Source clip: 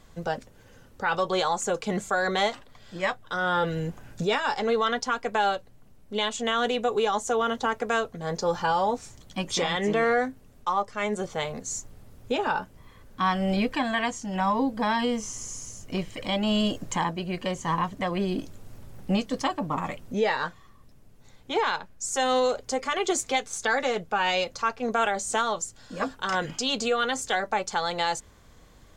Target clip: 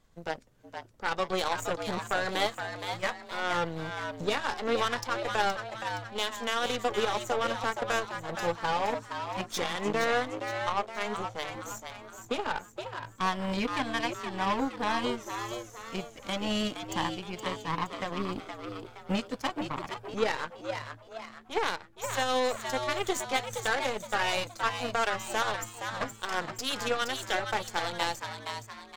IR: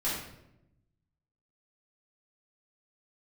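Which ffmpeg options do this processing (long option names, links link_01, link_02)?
-filter_complex "[0:a]aeval=exprs='0.211*(cos(1*acos(clip(val(0)/0.211,-1,1)))-cos(1*PI/2))+0.0473*(cos(3*acos(clip(val(0)/0.211,-1,1)))-cos(3*PI/2))+0.00299*(cos(7*acos(clip(val(0)/0.211,-1,1)))-cos(7*PI/2))+0.0075*(cos(8*acos(clip(val(0)/0.211,-1,1)))-cos(8*PI/2))':channel_layout=same,asplit=6[link_01][link_02][link_03][link_04][link_05][link_06];[link_02]adelay=469,afreqshift=110,volume=-7dB[link_07];[link_03]adelay=938,afreqshift=220,volume=-14.1dB[link_08];[link_04]adelay=1407,afreqshift=330,volume=-21.3dB[link_09];[link_05]adelay=1876,afreqshift=440,volume=-28.4dB[link_10];[link_06]adelay=2345,afreqshift=550,volume=-35.5dB[link_11];[link_01][link_07][link_08][link_09][link_10][link_11]amix=inputs=6:normalize=0"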